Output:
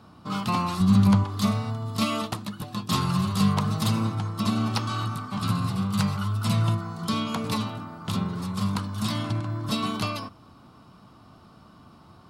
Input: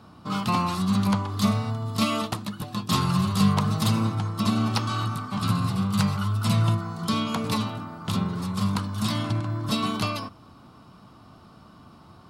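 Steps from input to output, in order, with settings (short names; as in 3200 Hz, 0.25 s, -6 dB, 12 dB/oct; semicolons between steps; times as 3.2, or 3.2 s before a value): 0.8–1.24 low shelf 200 Hz +11.5 dB; gain -1.5 dB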